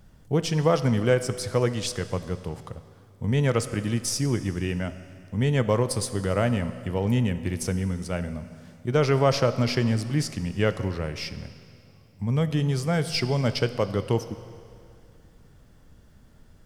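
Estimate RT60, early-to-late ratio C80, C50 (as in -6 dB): 2.4 s, 13.0 dB, 12.5 dB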